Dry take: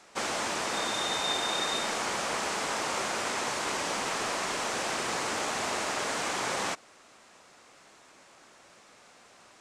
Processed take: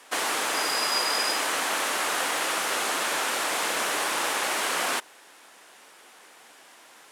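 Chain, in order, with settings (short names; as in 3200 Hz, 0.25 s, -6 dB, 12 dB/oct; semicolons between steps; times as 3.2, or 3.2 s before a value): HPF 170 Hz 12 dB/oct; speed mistake 33 rpm record played at 45 rpm; gain +4.5 dB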